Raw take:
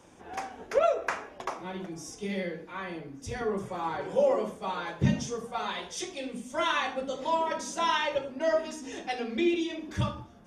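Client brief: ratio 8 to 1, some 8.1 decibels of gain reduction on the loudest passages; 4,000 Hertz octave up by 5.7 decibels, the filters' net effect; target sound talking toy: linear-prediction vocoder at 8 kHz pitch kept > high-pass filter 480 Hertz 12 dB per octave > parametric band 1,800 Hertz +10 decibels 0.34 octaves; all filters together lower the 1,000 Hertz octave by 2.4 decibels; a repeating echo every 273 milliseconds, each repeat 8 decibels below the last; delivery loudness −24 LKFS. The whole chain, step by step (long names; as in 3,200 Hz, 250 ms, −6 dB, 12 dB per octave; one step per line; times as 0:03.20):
parametric band 1,000 Hz −3.5 dB
parametric band 4,000 Hz +7 dB
downward compressor 8 to 1, threshold −28 dBFS
repeating echo 273 ms, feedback 40%, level −8 dB
linear-prediction vocoder at 8 kHz pitch kept
high-pass filter 480 Hz 12 dB per octave
parametric band 1,800 Hz +10 dB 0.34 octaves
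level +11.5 dB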